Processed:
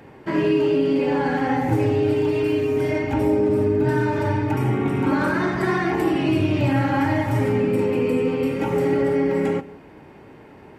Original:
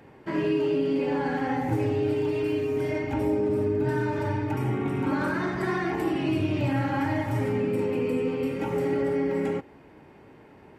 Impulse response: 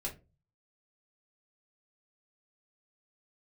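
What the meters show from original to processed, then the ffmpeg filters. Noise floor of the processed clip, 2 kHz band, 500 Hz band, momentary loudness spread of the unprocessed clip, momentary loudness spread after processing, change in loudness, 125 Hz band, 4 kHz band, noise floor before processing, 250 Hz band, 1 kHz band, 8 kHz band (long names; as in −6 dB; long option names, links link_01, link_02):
−45 dBFS, +6.0 dB, +5.5 dB, 3 LU, 3 LU, +6.0 dB, +6.0 dB, +6.0 dB, −52 dBFS, +6.0 dB, +6.0 dB, can't be measured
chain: -filter_complex "[0:a]asplit=2[link_01][link_02];[1:a]atrim=start_sample=2205,adelay=132[link_03];[link_02][link_03]afir=irnorm=-1:irlink=0,volume=-21.5dB[link_04];[link_01][link_04]amix=inputs=2:normalize=0,volume=6dB"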